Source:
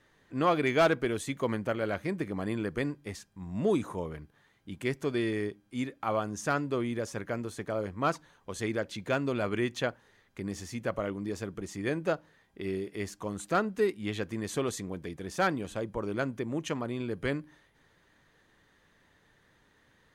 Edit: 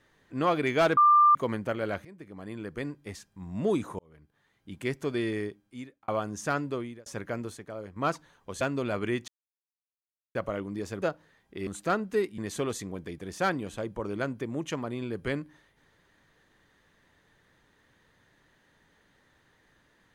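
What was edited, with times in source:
0:00.97–0:01.35: beep over 1,190 Hz −15.5 dBFS
0:02.05–0:03.26: fade in, from −20 dB
0:03.99–0:04.81: fade in linear
0:05.38–0:06.08: fade out
0:06.67–0:07.06: fade out
0:07.57–0:07.96: clip gain −7 dB
0:08.61–0:09.11: remove
0:09.78–0:10.85: silence
0:11.52–0:12.06: remove
0:12.71–0:13.32: remove
0:14.03–0:14.36: remove

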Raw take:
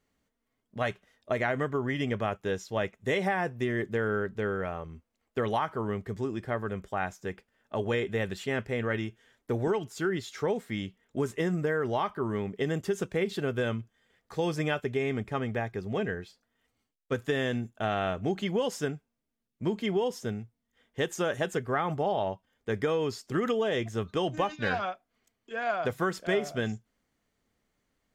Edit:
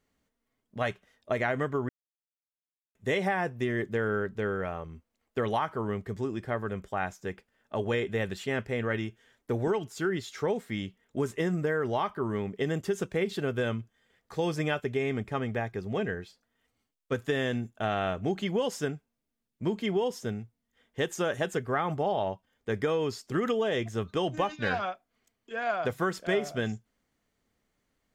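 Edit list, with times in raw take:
0:01.89–0:02.95: silence

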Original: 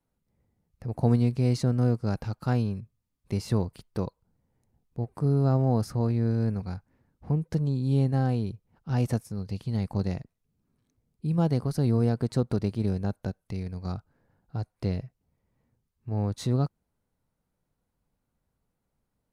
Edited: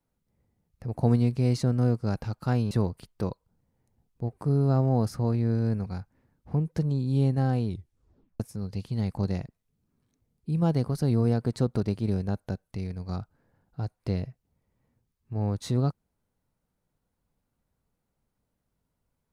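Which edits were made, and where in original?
0:02.71–0:03.47: remove
0:08.44: tape stop 0.72 s

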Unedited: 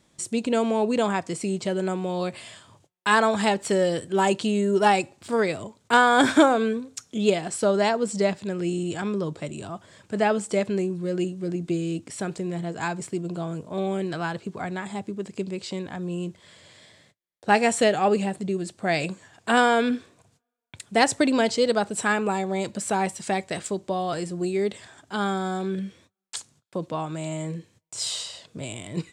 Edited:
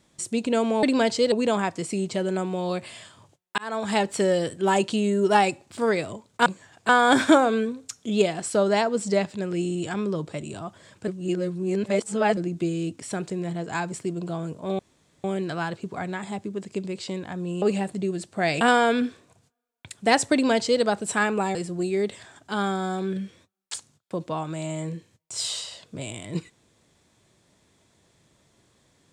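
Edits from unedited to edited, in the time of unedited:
0:03.09–0:03.52: fade in
0:10.16–0:11.45: reverse
0:13.87: splice in room tone 0.45 s
0:16.25–0:18.08: remove
0:19.07–0:19.50: move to 0:05.97
0:21.22–0:21.71: duplicate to 0:00.83
0:22.44–0:24.17: remove

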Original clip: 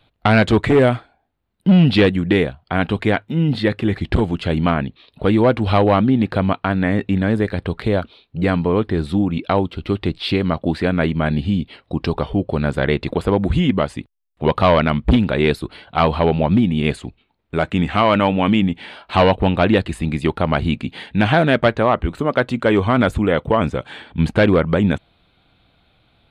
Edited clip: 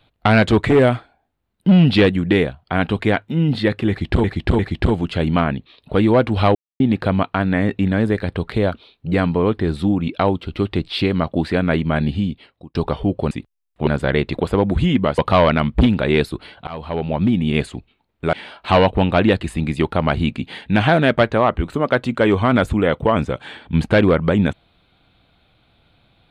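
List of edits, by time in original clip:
0:03.89–0:04.24: repeat, 3 plays
0:05.85–0:06.10: silence
0:11.41–0:12.05: fade out
0:13.92–0:14.48: move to 0:12.61
0:15.97–0:16.75: fade in, from −21 dB
0:17.63–0:18.78: remove

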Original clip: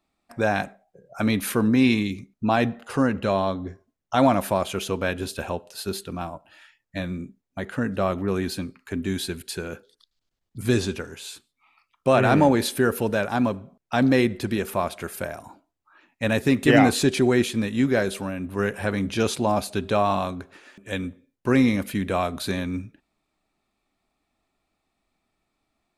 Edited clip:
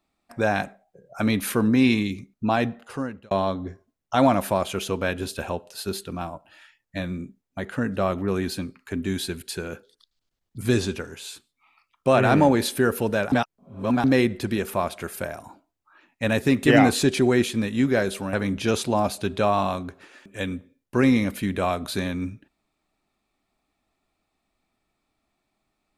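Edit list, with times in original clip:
0:02.18–0:03.31: fade out equal-power
0:13.32–0:14.04: reverse
0:18.33–0:18.85: remove

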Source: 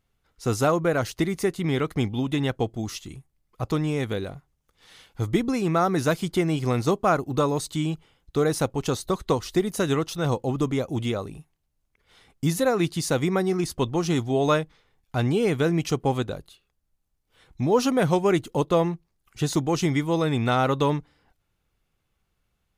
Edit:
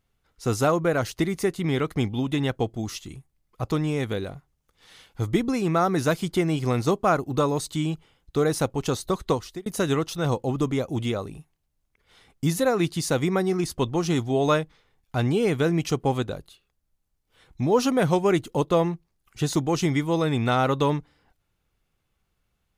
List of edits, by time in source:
0:09.30–0:09.66: fade out

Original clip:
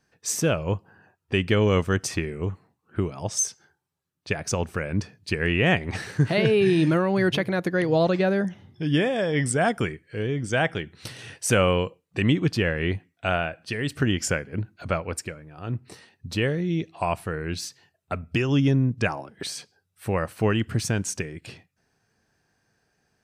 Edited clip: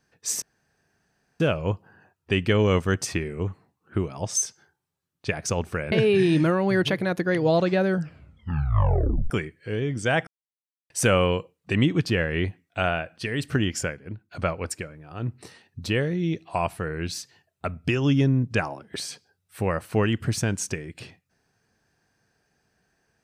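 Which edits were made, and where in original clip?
0:00.42: splice in room tone 0.98 s
0:04.94–0:06.39: remove
0:08.31: tape stop 1.46 s
0:10.74–0:11.37: silence
0:14.00–0:14.78: fade out, to −12.5 dB

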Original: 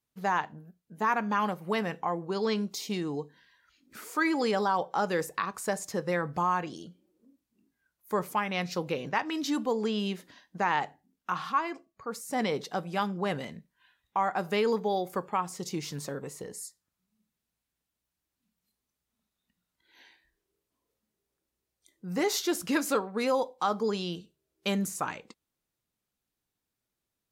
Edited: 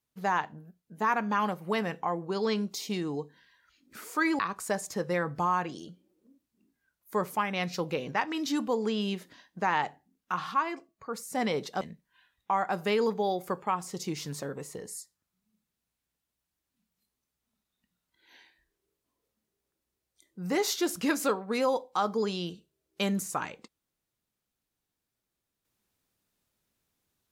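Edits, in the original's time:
0:04.39–0:05.37: remove
0:12.79–0:13.47: remove

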